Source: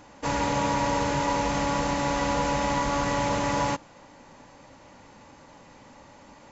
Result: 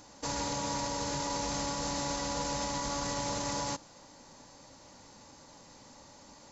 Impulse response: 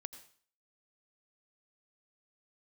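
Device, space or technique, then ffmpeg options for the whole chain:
over-bright horn tweeter: -af "highshelf=frequency=3500:width_type=q:width=1.5:gain=8.5,alimiter=limit=-20dB:level=0:latency=1:release=50,volume=-5dB"

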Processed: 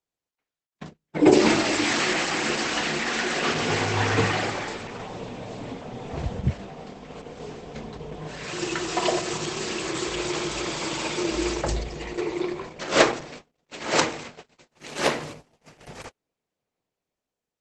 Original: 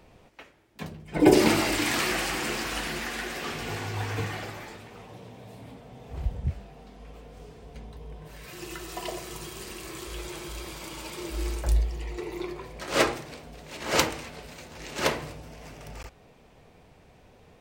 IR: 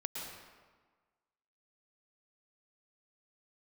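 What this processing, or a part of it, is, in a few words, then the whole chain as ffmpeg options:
video call: -af "highpass=140,dynaudnorm=framelen=580:gausssize=5:maxgain=12dB,agate=range=-38dB:threshold=-38dB:ratio=16:detection=peak" -ar 48000 -c:a libopus -b:a 12k

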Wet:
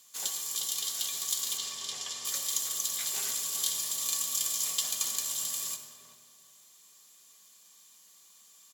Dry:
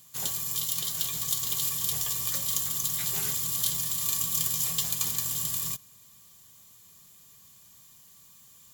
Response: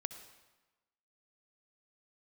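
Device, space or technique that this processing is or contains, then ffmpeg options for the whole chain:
supermarket ceiling speaker: -filter_complex "[0:a]aemphasis=mode=production:type=bsi,asettb=1/sr,asplit=3[link_01][link_02][link_03];[link_01]atrim=end=1.574[link_04];[link_02]atrim=start=1.57:end=2.25,asetpts=PTS-STARTPTS,afade=type=in:duration=0.004:curve=qsin,afade=type=out:start_time=0.676:duration=0.004:curve=qsin,lowpass=5600[link_05];[link_03]atrim=start=2.246[link_06];[link_04][link_05]acrossfade=duration=0.004:curve1=hsin:curve2=qsin[link_07];[link_07][link_06]acrossfade=duration=0.004:curve1=qsin:curve2=hsin,highpass=320,lowpass=6300,equalizer=frequency=220:width=1.8:gain=4.5[link_08];[1:a]atrim=start_sample=2205[link_09];[link_08][link_09]afir=irnorm=-1:irlink=0,asplit=2[link_10][link_11];[link_11]adelay=383,lowpass=frequency=980:poles=1,volume=-7.5dB,asplit=2[link_12][link_13];[link_13]adelay=383,lowpass=frequency=980:poles=1,volume=0.35,asplit=2[link_14][link_15];[link_15]adelay=383,lowpass=frequency=980:poles=1,volume=0.35,asplit=2[link_16][link_17];[link_17]adelay=383,lowpass=frequency=980:poles=1,volume=0.35[link_18];[link_10][link_12][link_14][link_16][link_18]amix=inputs=5:normalize=0,volume=-2dB"

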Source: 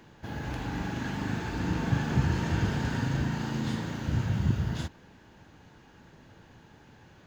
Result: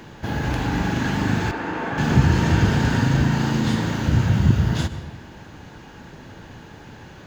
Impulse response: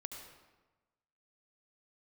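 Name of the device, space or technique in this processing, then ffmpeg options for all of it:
ducked reverb: -filter_complex "[0:a]asplit=3[link_01][link_02][link_03];[1:a]atrim=start_sample=2205[link_04];[link_02][link_04]afir=irnorm=-1:irlink=0[link_05];[link_03]apad=whole_len=320529[link_06];[link_05][link_06]sidechaincompress=threshold=-36dB:ratio=8:attack=6.9:release=157,volume=-1dB[link_07];[link_01][link_07]amix=inputs=2:normalize=0,asettb=1/sr,asplit=3[link_08][link_09][link_10];[link_08]atrim=end=1.514[link_11];[link_09]atrim=start=1.51:end=1.98,asetpts=PTS-STARTPTS,afade=type=in:duration=0.004:curve=qsin,afade=type=out:start_time=0.466:duration=0.004:curve=qsin,acrossover=split=320 2600:gain=0.1 1 0.2[link_12][link_13][link_14];[link_12][link_13][link_14]amix=inputs=3:normalize=0[link_15];[link_10]atrim=start=1.976[link_16];[link_11][link_15]acrossfade=duration=0.004:curve1=hsin:curve2=qsin[link_17];[link_17][link_16]acrossfade=duration=0.004:curve1=qsin:curve2=hsin,volume=9dB"

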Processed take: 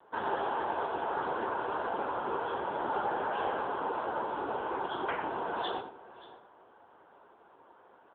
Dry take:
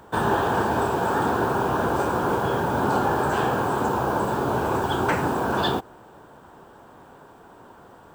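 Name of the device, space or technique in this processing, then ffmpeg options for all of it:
satellite phone: -filter_complex "[0:a]asettb=1/sr,asplit=3[link_01][link_02][link_03];[link_01]atrim=end=1.564[link_04];[link_02]atrim=start=1.56:end=2.22,asetpts=PTS-STARTPTS,afade=type=in:duration=0.004:curve=qsin,afade=type=out:start_time=0.656:duration=0.004:curve=qsin,bandreject=frequency=50:width_type=h:width=6,bandreject=frequency=100:width_type=h:width=6,bandreject=frequency=150:width_type=h:width=6,bandreject=frequency=200:width_type=h:width=6,bandreject=frequency=250:width_type=h:width=6,bandreject=frequency=300:width_type=h:width=6,bandreject=frequency=350:width_type=h:width=6,bandreject=frequency=400:width_type=h:width=6,bandreject=frequency=450:width_type=h:width=6[link_05];[link_03]atrim=start=2.216[link_06];[link_04][link_05]acrossfade=duration=0.004:curve1=hsin:curve2=qsin[link_07];[link_07][link_06]acrossfade=duration=0.004:curve1=qsin:curve2=hsin,asplit=2[link_08][link_09];[link_09]adelay=91,lowpass=frequency=2300:poles=1,volume=-8dB,asplit=2[link_10][link_11];[link_11]adelay=91,lowpass=frequency=2300:poles=1,volume=0.19,asplit=2[link_12][link_13];[link_13]adelay=91,lowpass=frequency=2300:poles=1,volume=0.19[link_14];[link_08][link_10][link_12][link_14]amix=inputs=4:normalize=0,adynamicequalizer=threshold=0.00398:dfrequency=3400:dqfactor=1.8:tfrequency=3400:tqfactor=1.8:attack=5:release=100:ratio=0.375:range=2.5:mode=boostabove:tftype=bell,highpass=370,lowpass=3300,aecho=1:1:576:0.126,volume=-7.5dB" -ar 8000 -c:a libopencore_amrnb -b:a 6700

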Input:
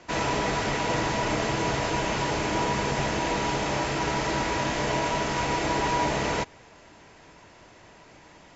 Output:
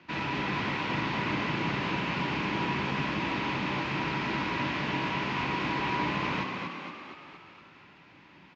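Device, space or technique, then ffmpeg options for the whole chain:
frequency-shifting delay pedal into a guitar cabinet: -filter_complex "[0:a]asplit=9[link_01][link_02][link_03][link_04][link_05][link_06][link_07][link_08][link_09];[link_02]adelay=234,afreqshift=55,volume=-5dB[link_10];[link_03]adelay=468,afreqshift=110,volume=-9.6dB[link_11];[link_04]adelay=702,afreqshift=165,volume=-14.2dB[link_12];[link_05]adelay=936,afreqshift=220,volume=-18.7dB[link_13];[link_06]adelay=1170,afreqshift=275,volume=-23.3dB[link_14];[link_07]adelay=1404,afreqshift=330,volume=-27.9dB[link_15];[link_08]adelay=1638,afreqshift=385,volume=-32.5dB[link_16];[link_09]adelay=1872,afreqshift=440,volume=-37.1dB[link_17];[link_01][link_10][link_11][link_12][link_13][link_14][link_15][link_16][link_17]amix=inputs=9:normalize=0,highpass=87,equalizer=frequency=170:width_type=q:width=4:gain=6,equalizer=frequency=280:width_type=q:width=4:gain=3,equalizer=frequency=470:width_type=q:width=4:gain=-8,equalizer=frequency=670:width_type=q:width=4:gain=-10,equalizer=frequency=2500:width_type=q:width=4:gain=5,lowpass=frequency=4200:width=0.5412,lowpass=frequency=4200:width=1.3066,volume=-5dB"

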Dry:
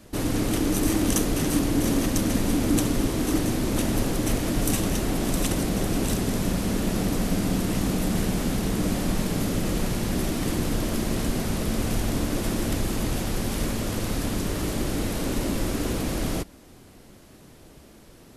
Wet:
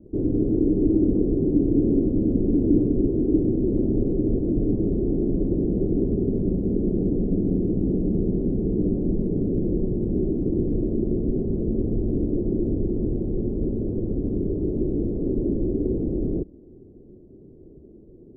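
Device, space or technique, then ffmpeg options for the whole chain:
under water: -af "lowpass=frequency=440:width=0.5412,lowpass=frequency=440:width=1.3066,equalizer=frequency=380:width_type=o:width=0.55:gain=9,volume=1dB"

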